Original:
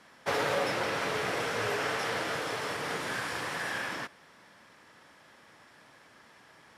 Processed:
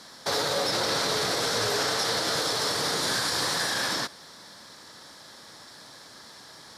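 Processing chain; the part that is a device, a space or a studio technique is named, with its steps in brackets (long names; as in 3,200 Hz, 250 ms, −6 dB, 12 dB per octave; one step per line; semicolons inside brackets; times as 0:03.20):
over-bright horn tweeter (high shelf with overshoot 3,300 Hz +7 dB, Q 3; brickwall limiter −25 dBFS, peak gain reduction 8.5 dB)
level +7.5 dB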